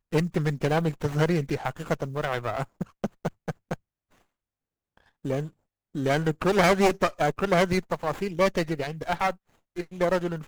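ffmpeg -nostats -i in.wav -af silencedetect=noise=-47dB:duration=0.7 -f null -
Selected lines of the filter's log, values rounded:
silence_start: 3.76
silence_end: 4.97 | silence_duration: 1.22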